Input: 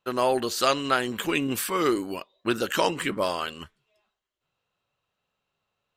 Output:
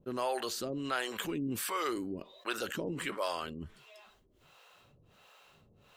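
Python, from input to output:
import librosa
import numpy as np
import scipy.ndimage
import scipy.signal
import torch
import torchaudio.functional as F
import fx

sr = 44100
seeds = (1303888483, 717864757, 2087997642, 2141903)

y = fx.harmonic_tremolo(x, sr, hz=1.4, depth_pct=100, crossover_hz=420.0)
y = fx.env_flatten(y, sr, amount_pct=50)
y = y * 10.0 ** (-8.0 / 20.0)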